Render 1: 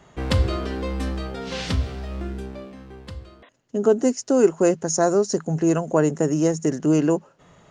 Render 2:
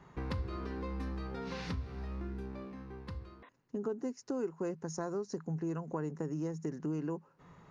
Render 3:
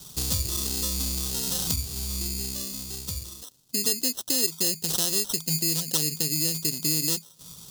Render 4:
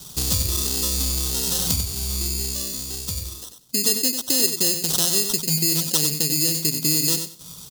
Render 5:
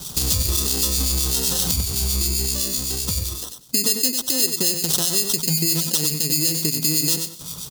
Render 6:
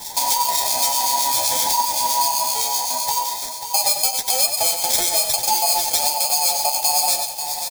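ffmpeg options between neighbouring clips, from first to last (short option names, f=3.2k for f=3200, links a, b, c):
-af "equalizer=f=160:t=o:w=0.33:g=4,equalizer=f=630:t=o:w=0.33:g=-9,equalizer=f=1k:t=o:w=0.33:g=5,equalizer=f=3.15k:t=o:w=0.33:g=-8,equalizer=f=8k:t=o:w=0.33:g=-12,acompressor=threshold=-32dB:ratio=3,highshelf=f=5.4k:g=-9,volume=-5.5dB"
-af "bass=f=250:g=7,treble=f=4k:g=7,acrusher=samples=19:mix=1:aa=0.000001,aexciter=amount=5.7:drive=9.9:freq=3.3k"
-af "aecho=1:1:94|188|282:0.398|0.0717|0.0129,volume=4.5dB"
-filter_complex "[0:a]acompressor=threshold=-25dB:ratio=2.5,acrossover=split=2000[a][b];[a]aeval=exprs='val(0)*(1-0.5/2+0.5/2*cos(2*PI*7.8*n/s))':c=same[c];[b]aeval=exprs='val(0)*(1-0.5/2-0.5/2*cos(2*PI*7.8*n/s))':c=same[d];[c][d]amix=inputs=2:normalize=0,alimiter=level_in=10dB:limit=-1dB:release=50:level=0:latency=1,volume=-1dB"
-filter_complex "[0:a]afftfilt=real='real(if(between(b,1,1008),(2*floor((b-1)/48)+1)*48-b,b),0)':imag='imag(if(between(b,1,1008),(2*floor((b-1)/48)+1)*48-b,b),0)*if(between(b,1,1008),-1,1)':win_size=2048:overlap=0.75,flanger=delay=8.4:depth=6.2:regen=35:speed=1.1:shape=sinusoidal,asplit=2[a][b];[b]aecho=0:1:539|1078|1617|2156|2695:0.355|0.153|0.0656|0.0282|0.0121[c];[a][c]amix=inputs=2:normalize=0,volume=5dB"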